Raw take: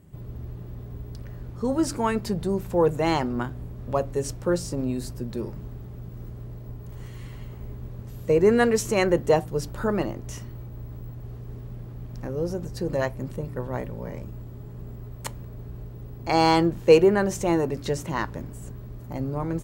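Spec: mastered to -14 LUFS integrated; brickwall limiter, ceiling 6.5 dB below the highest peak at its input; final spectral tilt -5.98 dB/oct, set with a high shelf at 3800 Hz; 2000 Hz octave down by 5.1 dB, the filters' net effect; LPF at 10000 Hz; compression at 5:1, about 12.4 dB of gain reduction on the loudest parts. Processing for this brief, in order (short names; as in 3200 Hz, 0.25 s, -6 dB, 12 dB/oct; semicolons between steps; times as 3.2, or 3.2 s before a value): LPF 10000 Hz; bell 2000 Hz -7.5 dB; high shelf 3800 Hz +4 dB; compressor 5:1, threshold -24 dBFS; gain +19.5 dB; limiter -1.5 dBFS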